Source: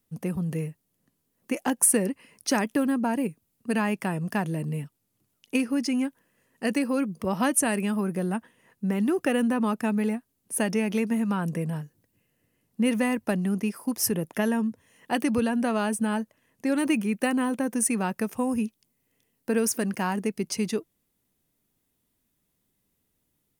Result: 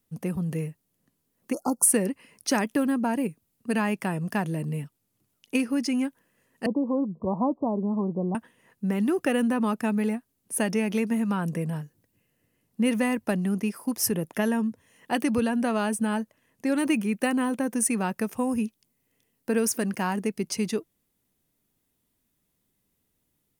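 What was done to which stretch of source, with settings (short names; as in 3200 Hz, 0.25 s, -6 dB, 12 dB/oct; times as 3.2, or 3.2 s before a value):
1.53–1.86 spectral delete 1400–4200 Hz
6.66–8.35 steep low-pass 1100 Hz 96 dB/oct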